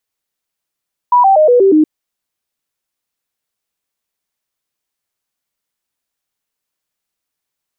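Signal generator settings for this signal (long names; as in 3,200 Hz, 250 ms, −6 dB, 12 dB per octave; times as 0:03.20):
stepped sweep 979 Hz down, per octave 3, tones 6, 0.12 s, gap 0.00 s −5 dBFS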